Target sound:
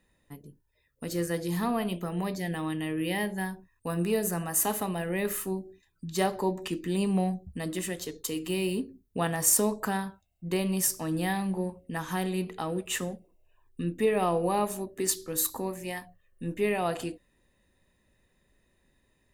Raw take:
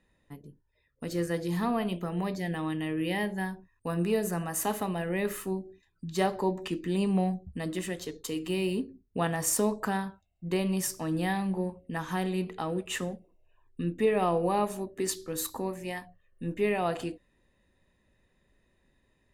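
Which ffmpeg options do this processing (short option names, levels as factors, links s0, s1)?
-af "highshelf=f=7300:g=10"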